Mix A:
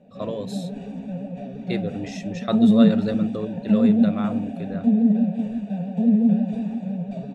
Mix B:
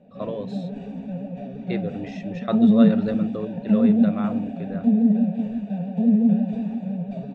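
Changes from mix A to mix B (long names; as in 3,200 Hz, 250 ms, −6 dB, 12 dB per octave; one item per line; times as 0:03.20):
speech: add bass and treble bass −4 dB, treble −9 dB
master: add high-frequency loss of the air 94 metres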